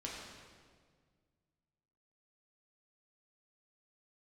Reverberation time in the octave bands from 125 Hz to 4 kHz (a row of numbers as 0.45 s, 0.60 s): 2.6 s, 2.2 s, 1.9 s, 1.6 s, 1.5 s, 1.4 s